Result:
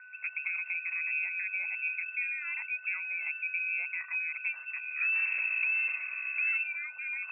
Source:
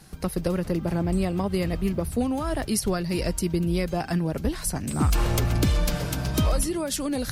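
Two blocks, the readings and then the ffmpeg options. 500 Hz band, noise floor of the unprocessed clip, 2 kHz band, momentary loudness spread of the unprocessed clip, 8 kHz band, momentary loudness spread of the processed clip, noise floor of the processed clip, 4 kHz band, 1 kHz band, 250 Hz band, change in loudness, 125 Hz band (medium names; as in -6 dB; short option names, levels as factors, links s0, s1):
under -40 dB, -36 dBFS, +9.5 dB, 4 LU, under -40 dB, 7 LU, -48 dBFS, under -40 dB, -20.5 dB, under -40 dB, -5.0 dB, under -40 dB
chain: -af "aeval=exprs='val(0)+0.0178*sin(2*PI*1200*n/s)':c=same,lowpass=f=2300:t=q:w=0.5098,lowpass=f=2300:t=q:w=0.6013,lowpass=f=2300:t=q:w=0.9,lowpass=f=2300:t=q:w=2.563,afreqshift=-2700,aderivative"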